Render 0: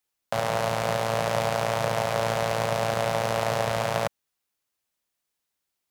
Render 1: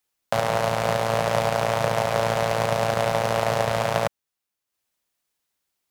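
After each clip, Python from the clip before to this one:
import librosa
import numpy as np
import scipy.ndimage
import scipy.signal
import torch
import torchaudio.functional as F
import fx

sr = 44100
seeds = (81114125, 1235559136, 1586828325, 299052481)

y = fx.transient(x, sr, attack_db=2, sustain_db=-6)
y = y * librosa.db_to_amplitude(3.0)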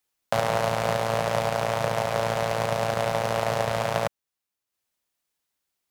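y = fx.rider(x, sr, range_db=3, speed_s=2.0)
y = y * librosa.db_to_amplitude(-2.5)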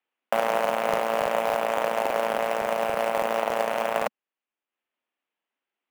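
y = scipy.signal.sosfilt(scipy.signal.ellip(3, 1.0, 40, [230.0, 2900.0], 'bandpass', fs=sr, output='sos'), x)
y = fx.quant_float(y, sr, bits=2)
y = fx.buffer_crackle(y, sr, first_s=0.61, period_s=0.28, block=2048, kind='repeat')
y = y * librosa.db_to_amplitude(1.0)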